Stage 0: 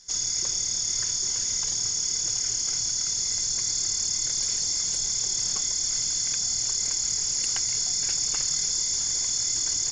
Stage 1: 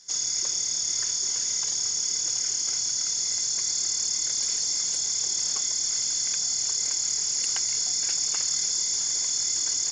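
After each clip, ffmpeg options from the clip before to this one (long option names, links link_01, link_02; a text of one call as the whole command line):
ffmpeg -i in.wav -filter_complex "[0:a]highpass=frequency=200:poles=1,acrossover=split=320[link_01][link_02];[link_01]alimiter=level_in=27dB:limit=-24dB:level=0:latency=1,volume=-27dB[link_03];[link_03][link_02]amix=inputs=2:normalize=0" out.wav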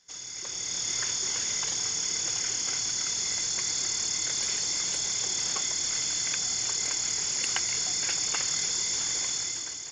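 ffmpeg -i in.wav -af "highshelf=frequency=3900:width_type=q:width=1.5:gain=-7,dynaudnorm=framelen=110:gausssize=11:maxgain=10.5dB,volume=-5dB" out.wav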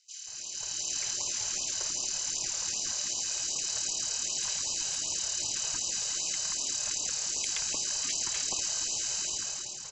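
ffmpeg -i in.wav -filter_complex "[0:a]aeval=exprs='val(0)*sin(2*PI*480*n/s)':channel_layout=same,acrossover=split=1700[link_01][link_02];[link_01]adelay=180[link_03];[link_03][link_02]amix=inputs=2:normalize=0,afftfilt=real='re*(1-between(b*sr/1024,240*pow(1800/240,0.5+0.5*sin(2*PI*2.6*pts/sr))/1.41,240*pow(1800/240,0.5+0.5*sin(2*PI*2.6*pts/sr))*1.41))':imag='im*(1-between(b*sr/1024,240*pow(1800/240,0.5+0.5*sin(2*PI*2.6*pts/sr))/1.41,240*pow(1800/240,0.5+0.5*sin(2*PI*2.6*pts/sr))*1.41))':win_size=1024:overlap=0.75" out.wav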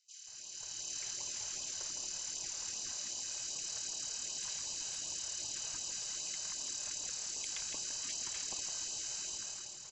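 ffmpeg -i in.wav -af "aecho=1:1:160:0.376,volume=-9dB" out.wav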